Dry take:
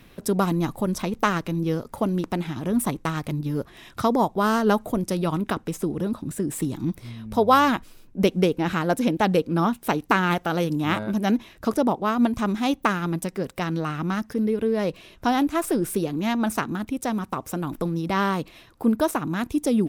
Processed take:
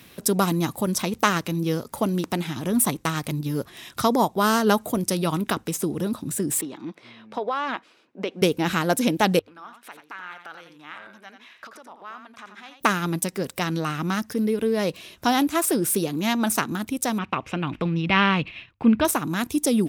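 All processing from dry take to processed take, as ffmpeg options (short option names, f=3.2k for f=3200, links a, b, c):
-filter_complex "[0:a]asettb=1/sr,asplit=3[a][b][c];[a]atrim=end=6.614[d];[b]atrim=start=6.61:end=8.42,asetpts=PTS-STARTPTS,afade=t=in:d=0.004:c=qsin,afade=t=out:st=1.806:d=0.004:c=qsin,highpass=390,lowpass=2.6k,acompressor=threshold=-22dB:ratio=12:attack=3.2:release=140:knee=1:detection=peak[e];[c]atrim=start=8.416[f];[d][e]acrossfade=d=0.004:c1=hsin:c2=qsin[g];[g][f]acrossfade=d=0.004:c1=qsin:c2=hsin,asettb=1/sr,asplit=3[h][i][j];[h]atrim=end=9.394[k];[i]atrim=start=9.39:end=12.8,asetpts=PTS-STARTPTS,afade=t=in:d=0.004:c=qsin,afade=t=out:st=3.406:d=0.004:c=qsin,acompressor=threshold=-30dB:ratio=16:attack=3.2:release=140:knee=1:detection=peak,bandpass=f=1.6k:t=q:w=1.3,aecho=1:1:87:0.398,atrim=end_sample=150381[l];[j]atrim=start=12.796[m];[k][l]acrossfade=d=0.004:c1=hsin:c2=qsin[n];[n][m]acrossfade=d=0.004:c1=qsin:c2=hsin,asettb=1/sr,asplit=3[o][p][q];[o]atrim=end=17.184[r];[p]atrim=start=17.18:end=19.05,asetpts=PTS-STARTPTS,afade=t=in:d=0.004:c=qsin,afade=t=out:st=1.866:d=0.004:c=qsin,agate=range=-33dB:threshold=-46dB:ratio=3:release=100:detection=peak,lowpass=f=2.6k:t=q:w=3.9,asubboost=boost=6.5:cutoff=190[s];[q]atrim=start=19.046[t];[r][s]acrossfade=d=0.004:c1=hsin:c2=qsin[u];[u][t]acrossfade=d=0.004:c1=qsin:c2=hsin,highpass=71,highshelf=f=2.8k:g=10,bandreject=f=50:t=h:w=6,bandreject=f=100:t=h:w=6"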